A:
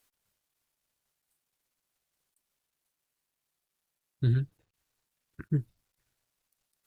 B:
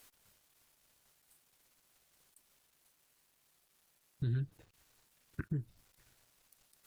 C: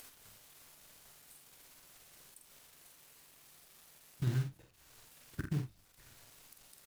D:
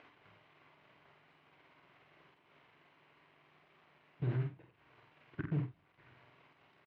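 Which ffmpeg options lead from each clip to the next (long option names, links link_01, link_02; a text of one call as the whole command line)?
ffmpeg -i in.wav -af "acompressor=threshold=-33dB:ratio=6,alimiter=level_in=14.5dB:limit=-24dB:level=0:latency=1:release=248,volume=-14.5dB,volume=11dB" out.wav
ffmpeg -i in.wav -filter_complex "[0:a]acompressor=mode=upward:threshold=-49dB:ratio=2.5,acrusher=bits=4:mode=log:mix=0:aa=0.000001,asplit=2[link_01][link_02];[link_02]aecho=0:1:47|78:0.562|0.158[link_03];[link_01][link_03]amix=inputs=2:normalize=0" out.wav
ffmpeg -i in.wav -filter_complex "[0:a]asoftclip=type=hard:threshold=-30dB,highpass=160,equalizer=frequency=220:width_type=q:width=4:gain=-9,equalizer=frequency=520:width_type=q:width=4:gain=-5,equalizer=frequency=820:width_type=q:width=4:gain=-4,equalizer=frequency=1300:width_type=q:width=4:gain=-4,equalizer=frequency=1800:width_type=q:width=4:gain=-5,lowpass=frequency=2300:width=0.5412,lowpass=frequency=2300:width=1.3066,asplit=2[link_01][link_02];[link_02]adelay=48,volume=-8.5dB[link_03];[link_01][link_03]amix=inputs=2:normalize=0,volume=5dB" out.wav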